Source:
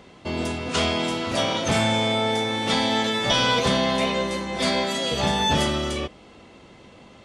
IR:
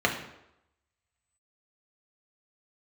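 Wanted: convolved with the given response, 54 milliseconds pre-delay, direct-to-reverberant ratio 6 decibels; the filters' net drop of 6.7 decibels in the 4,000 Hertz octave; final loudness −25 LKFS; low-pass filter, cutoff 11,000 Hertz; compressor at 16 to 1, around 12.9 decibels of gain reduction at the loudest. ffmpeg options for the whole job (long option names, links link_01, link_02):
-filter_complex "[0:a]lowpass=11000,equalizer=frequency=4000:width_type=o:gain=-8.5,acompressor=threshold=-31dB:ratio=16,asplit=2[link_01][link_02];[1:a]atrim=start_sample=2205,adelay=54[link_03];[link_02][link_03]afir=irnorm=-1:irlink=0,volume=-20dB[link_04];[link_01][link_04]amix=inputs=2:normalize=0,volume=9dB"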